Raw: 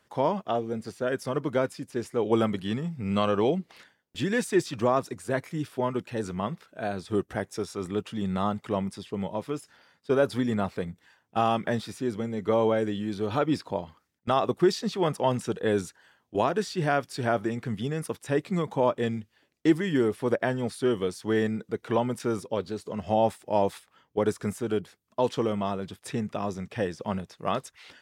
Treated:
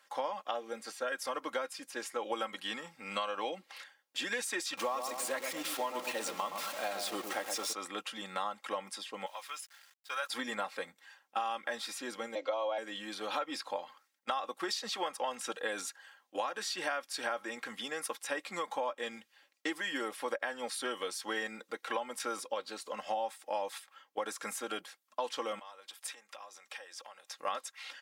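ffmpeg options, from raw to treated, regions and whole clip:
-filter_complex "[0:a]asettb=1/sr,asplit=3[s0][s1][s2];[s0]atrim=end=4.774[s3];[s1]atrim=start=4.77:end=7.73,asetpts=PTS-STARTPTS,afade=t=in:d=0.004:c=qsin,afade=t=out:st=2.956:d=0.004:c=qsin,aeval=exprs='val(0)+0.5*0.0158*sgn(val(0))':c=same,equalizer=f=1600:t=o:w=0.3:g=-6,asplit=2[s4][s5];[s5]adelay=118,lowpass=f=1000:p=1,volume=0.501,asplit=2[s6][s7];[s7]adelay=118,lowpass=f=1000:p=1,volume=0.52,asplit=2[s8][s9];[s9]adelay=118,lowpass=f=1000:p=1,volume=0.52,asplit=2[s10][s11];[s11]adelay=118,lowpass=f=1000:p=1,volume=0.52,asplit=2[s12][s13];[s13]adelay=118,lowpass=f=1000:p=1,volume=0.52,asplit=2[s14][s15];[s15]adelay=118,lowpass=f=1000:p=1,volume=0.52[s16];[s4][s6][s8][s10][s12][s14][s16]amix=inputs=7:normalize=0,atrim=end_sample=130536[s17];[s2]atrim=start=7.726[s18];[s3][s17]acrossfade=d=0.004:c1=hsin:c2=qsin[s19];[s19][s18]acrossfade=d=0.004:c1=qsin:c2=hsin,asettb=1/sr,asplit=3[s20][s21][s22];[s20]atrim=end=9.264[s23];[s21]atrim=start=9.26:end=10.3,asetpts=PTS-STARTPTS,afade=t=in:d=0.004:c=qsin,afade=t=out:st=1.036:d=0.004:c=qsin,highpass=1300,aeval=exprs='val(0)*gte(abs(val(0)),0.00126)':c=same[s24];[s22]atrim=start=10.296[s25];[s23][s24]acrossfade=d=0.004:c1=hsin:c2=qsin[s26];[s26][s25]acrossfade=d=0.004:c1=qsin:c2=hsin,asettb=1/sr,asplit=3[s27][s28][s29];[s27]atrim=end=12.354[s30];[s28]atrim=start=12.35:end=12.78,asetpts=PTS-STARTPTS,afade=t=in:d=0.004:c=qsin,afade=t=out:st=0.426:d=0.004:c=qsin,afreqshift=96,highpass=320,equalizer=f=630:t=q:w=4:g=9,equalizer=f=1700:t=q:w=4:g=-8,equalizer=f=3000:t=q:w=4:g=4,equalizer=f=4900:t=q:w=4:g=4,lowpass=f=5900:w=0.5412,lowpass=f=5900:w=1.3066[s31];[s29]atrim=start=12.776[s32];[s30][s31]acrossfade=d=0.004:c1=hsin:c2=qsin[s33];[s33][s32]acrossfade=d=0.004:c1=qsin:c2=hsin,asettb=1/sr,asplit=3[s34][s35][s36];[s34]atrim=end=25.594[s37];[s35]atrim=start=25.59:end=27.33,asetpts=PTS-STARTPTS,afade=t=in:d=0.004:c=qsin,afade=t=out:st=1.736:d=0.004:c=qsin,acompressor=threshold=0.00708:ratio=6:attack=3.2:release=140:knee=1:detection=peak,highpass=490,highshelf=f=4100:g=5[s38];[s36]atrim=start=27.326[s39];[s37][s38]acrossfade=d=0.004:c1=hsin:c2=qsin[s40];[s40][s39]acrossfade=d=0.004:c1=qsin:c2=hsin,highpass=820,aecho=1:1:3.7:0.68,acompressor=threshold=0.02:ratio=6,volume=1.26"

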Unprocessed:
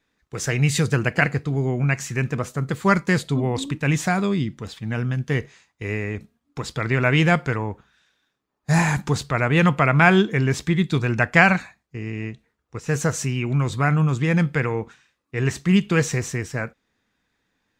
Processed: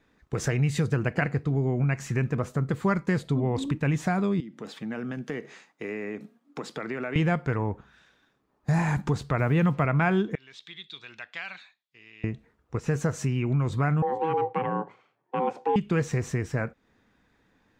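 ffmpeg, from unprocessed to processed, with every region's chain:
-filter_complex "[0:a]asettb=1/sr,asplit=3[s0][s1][s2];[s0]atrim=end=4.404[s3];[s1]atrim=start=4.4:end=7.16,asetpts=PTS-STARTPTS,afade=t=in:d=0.004:c=qsin,afade=t=out:st=2.756:d=0.004:c=qsin,highpass=f=200:w=0.5412,highpass=f=200:w=1.3066,bandreject=f=1000:w=18,acompressor=threshold=0.00562:ratio=2:attack=3.2:release=140:knee=1:detection=peak[s4];[s2]atrim=start=7.156[s5];[s3][s4]acrossfade=d=0.004:c1=hsin:c2=qsin[s6];[s6][s5]acrossfade=d=0.004:c1=qsin:c2=hsin,asettb=1/sr,asplit=3[s7][s8][s9];[s7]atrim=end=9.394[s10];[s8]atrim=start=9.39:end=9.85,asetpts=PTS-STARTPTS,afade=t=in:d=0.004:c=qsin,afade=t=out:st=0.456:d=0.004:c=qsin,highpass=59,equalizer=f=120:t=o:w=2.5:g=3.5,acrusher=bits=6:mix=0:aa=0.5[s11];[s9]atrim=start=9.846[s12];[s10][s11]acrossfade=d=0.004:c1=hsin:c2=qsin[s13];[s13][s12]acrossfade=d=0.004:c1=qsin:c2=hsin,asettb=1/sr,asplit=3[s14][s15][s16];[s14]atrim=end=10.354[s17];[s15]atrim=start=10.35:end=12.24,asetpts=PTS-STARTPTS,afade=t=in:d=0.004:c=qsin,afade=t=out:st=1.886:d=0.004:c=qsin,bandpass=f=3600:t=q:w=5.1,acompressor=threshold=0.00447:ratio=1.5:attack=3.2:release=140:knee=1:detection=peak[s18];[s16]atrim=start=12.236[s19];[s17][s18]acrossfade=d=0.004:c1=hsin:c2=qsin[s20];[s20][s19]acrossfade=d=0.004:c1=qsin:c2=hsin,asettb=1/sr,asplit=3[s21][s22][s23];[s21]atrim=end=14.024[s24];[s22]atrim=start=14.02:end=15.76,asetpts=PTS-STARTPTS,afade=t=in:d=0.004:c=qsin,afade=t=out:st=1.736:d=0.004:c=qsin,lowpass=f=1200:p=1,aeval=exprs='val(0)*sin(2*PI*530*n/s)':c=same,afreqshift=110[s25];[s23]atrim=start=15.756[s26];[s24][s25]acrossfade=d=0.004:c1=hsin:c2=qsin[s27];[s27][s26]acrossfade=d=0.004:c1=qsin:c2=hsin,highshelf=f=2100:g=-11,acompressor=threshold=0.0126:ratio=2.5,volume=2.82"

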